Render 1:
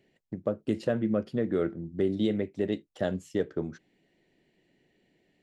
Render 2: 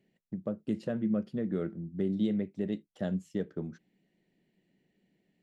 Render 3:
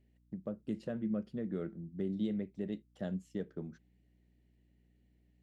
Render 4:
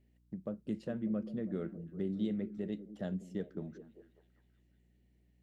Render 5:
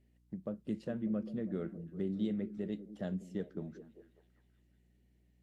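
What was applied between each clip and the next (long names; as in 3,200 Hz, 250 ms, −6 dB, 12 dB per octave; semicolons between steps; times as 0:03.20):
parametric band 190 Hz +11 dB 0.61 octaves; level −8 dB
mains hum 60 Hz, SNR 29 dB; level −5.5 dB
echo through a band-pass that steps 198 ms, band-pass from 260 Hz, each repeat 0.7 octaves, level −10.5 dB
AAC 64 kbit/s 32,000 Hz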